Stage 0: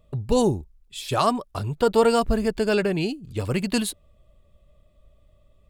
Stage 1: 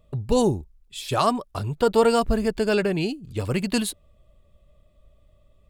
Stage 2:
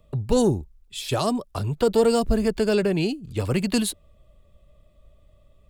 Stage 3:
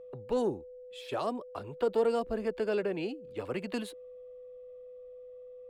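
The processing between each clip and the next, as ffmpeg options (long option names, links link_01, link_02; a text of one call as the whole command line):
ffmpeg -i in.wav -af anull out.wav
ffmpeg -i in.wav -filter_complex "[0:a]acrossover=split=220|630|3400[link_01][link_02][link_03][link_04];[link_03]acompressor=threshold=-33dB:ratio=6[link_05];[link_01][link_02][link_05][link_04]amix=inputs=4:normalize=0,asoftclip=type=tanh:threshold=-10dB,volume=2dB" out.wav
ffmpeg -i in.wav -filter_complex "[0:a]acrossover=split=260 3000:gain=0.158 1 0.178[link_01][link_02][link_03];[link_01][link_02][link_03]amix=inputs=3:normalize=0,aeval=exprs='val(0)+0.0126*sin(2*PI*500*n/s)':channel_layout=same,volume=-7.5dB" out.wav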